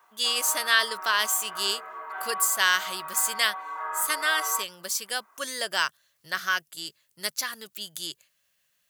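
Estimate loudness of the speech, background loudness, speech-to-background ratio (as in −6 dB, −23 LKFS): −26.0 LKFS, −35.5 LKFS, 9.5 dB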